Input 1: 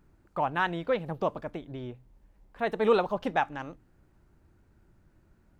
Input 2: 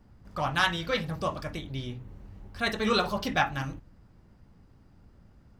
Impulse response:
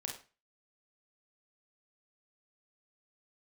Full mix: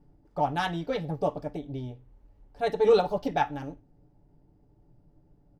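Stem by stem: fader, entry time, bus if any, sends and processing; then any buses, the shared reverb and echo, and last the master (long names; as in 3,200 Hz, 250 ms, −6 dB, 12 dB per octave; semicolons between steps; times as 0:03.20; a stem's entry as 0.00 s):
0.0 dB, 0.00 s, send −17.5 dB, elliptic low-pass filter 870 Hz, stop band 40 dB; comb filter 6.9 ms, depth 86%
−2.0 dB, 1.2 ms, polarity flipped, send −20 dB, expander for the loud parts 1.5 to 1, over −40 dBFS; automatic ducking −6 dB, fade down 0.20 s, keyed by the first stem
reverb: on, RT60 0.35 s, pre-delay 29 ms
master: no processing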